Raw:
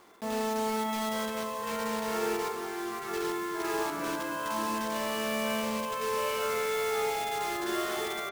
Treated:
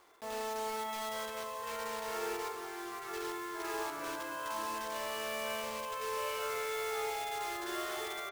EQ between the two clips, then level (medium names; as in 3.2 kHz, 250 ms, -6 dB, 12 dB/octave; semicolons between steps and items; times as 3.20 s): peaking EQ 200 Hz -14 dB 0.99 oct; -5.0 dB